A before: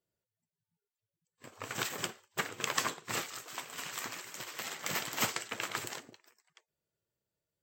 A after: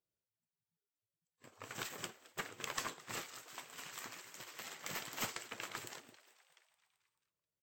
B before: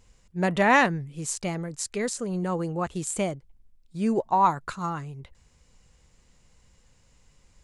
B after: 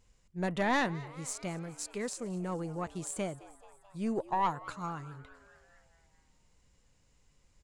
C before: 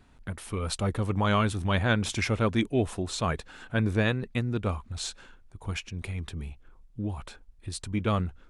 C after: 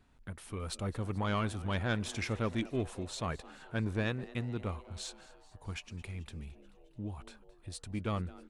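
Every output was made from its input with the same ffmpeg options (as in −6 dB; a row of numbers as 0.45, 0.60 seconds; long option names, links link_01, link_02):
-filter_complex "[0:a]aeval=exprs='(tanh(4.47*val(0)+0.35)-tanh(0.35))/4.47':channel_layout=same,asplit=7[link_01][link_02][link_03][link_04][link_05][link_06][link_07];[link_02]adelay=217,afreqshift=130,volume=-20dB[link_08];[link_03]adelay=434,afreqshift=260,volume=-23.9dB[link_09];[link_04]adelay=651,afreqshift=390,volume=-27.8dB[link_10];[link_05]adelay=868,afreqshift=520,volume=-31.6dB[link_11];[link_06]adelay=1085,afreqshift=650,volume=-35.5dB[link_12];[link_07]adelay=1302,afreqshift=780,volume=-39.4dB[link_13];[link_01][link_08][link_09][link_10][link_11][link_12][link_13]amix=inputs=7:normalize=0,volume=-7dB"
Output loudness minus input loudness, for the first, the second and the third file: −8.0, −9.0, −8.0 LU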